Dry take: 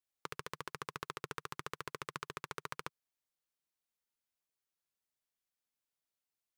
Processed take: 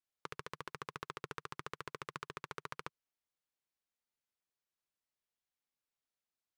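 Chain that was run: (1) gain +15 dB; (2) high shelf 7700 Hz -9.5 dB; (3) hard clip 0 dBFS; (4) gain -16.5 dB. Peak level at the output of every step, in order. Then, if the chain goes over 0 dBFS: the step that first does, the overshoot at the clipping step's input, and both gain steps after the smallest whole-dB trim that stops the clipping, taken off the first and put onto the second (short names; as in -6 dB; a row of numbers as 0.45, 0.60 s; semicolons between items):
-4.0, -5.5, -5.5, -22.0 dBFS; no overload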